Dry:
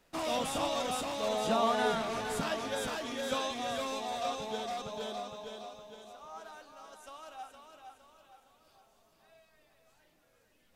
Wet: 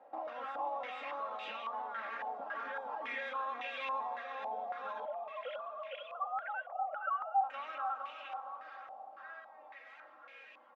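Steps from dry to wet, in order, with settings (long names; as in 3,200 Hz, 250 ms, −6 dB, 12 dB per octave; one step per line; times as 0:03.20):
0:05.05–0:07.41: three sine waves on the formant tracks
downward compressor 6 to 1, threshold −46 dBFS, peak gain reduction 19 dB
high-pass filter 510 Hz 12 dB per octave
tilt shelving filter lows −3 dB, about 750 Hz
brickwall limiter −44.5 dBFS, peak gain reduction 10 dB
high-frequency loss of the air 61 metres
comb filter 3.7 ms, depth 75%
feedback delay with all-pass diffusion 684 ms, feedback 40%, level −13.5 dB
low-pass on a step sequencer 3.6 Hz 750–2,500 Hz
level +8 dB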